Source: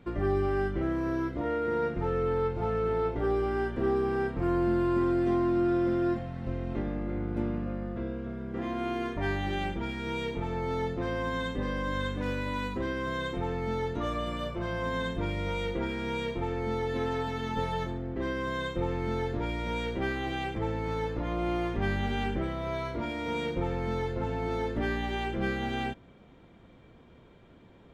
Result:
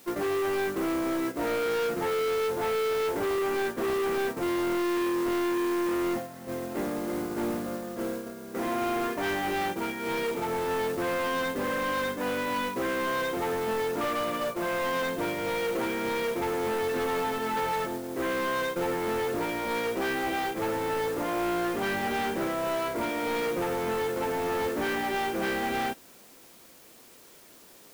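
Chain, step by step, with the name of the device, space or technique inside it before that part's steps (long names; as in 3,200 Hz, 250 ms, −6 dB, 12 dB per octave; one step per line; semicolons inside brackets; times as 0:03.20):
aircraft radio (band-pass filter 310–2,300 Hz; hard clipping −35.5 dBFS, distortion −7 dB; white noise bed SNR 17 dB; noise gate −40 dBFS, range −8 dB)
level +9 dB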